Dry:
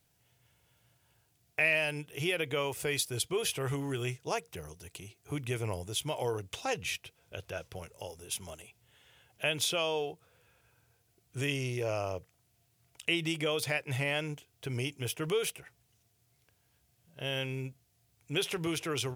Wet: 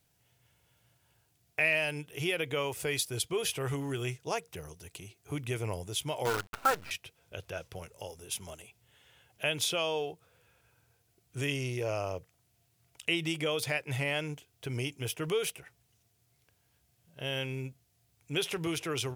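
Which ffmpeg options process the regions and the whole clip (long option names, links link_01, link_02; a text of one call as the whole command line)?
ffmpeg -i in.wav -filter_complex "[0:a]asettb=1/sr,asplit=3[link_01][link_02][link_03];[link_01]atrim=end=6.254[link_04];[link_02]atrim=start=6.25:end=6.91,asetpts=PTS-STARTPTS,afade=type=in:duration=0.004:curve=qsin,afade=type=out:start_time=0.656:duration=0.004:curve=qsin,lowpass=frequency=1400:width_type=q:width=11,lowshelf=frequency=68:gain=-6.5,acrusher=bits=6:dc=4:mix=0:aa=0.000001[link_05];[link_03]atrim=start=6.906[link_06];[link_04][link_05]acrossfade=duration=0.004:curve1=hsin:curve2=qsin[link_07];[link_07][link_06]acrossfade=duration=0.004:curve1=qsin:curve2=hsin" out.wav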